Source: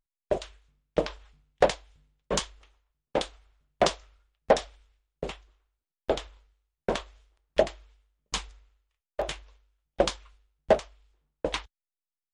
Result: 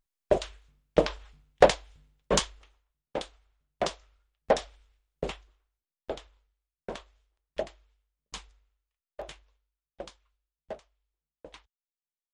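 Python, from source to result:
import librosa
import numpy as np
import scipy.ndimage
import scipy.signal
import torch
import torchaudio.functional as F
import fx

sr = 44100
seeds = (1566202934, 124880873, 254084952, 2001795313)

y = fx.gain(x, sr, db=fx.line((2.33, 3.5), (3.21, -6.5), (3.89, -6.5), (5.24, 1.5), (6.21, -10.0), (9.24, -10.0), (10.12, -19.0)))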